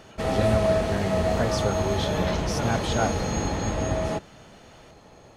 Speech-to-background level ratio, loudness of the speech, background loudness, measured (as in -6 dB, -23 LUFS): -4.0 dB, -30.0 LUFS, -26.0 LUFS